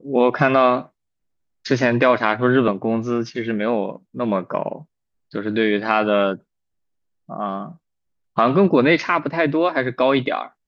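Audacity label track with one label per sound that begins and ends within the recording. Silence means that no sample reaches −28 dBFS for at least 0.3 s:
1.660000	4.760000	sound
5.340000	6.350000	sound
7.310000	7.660000	sound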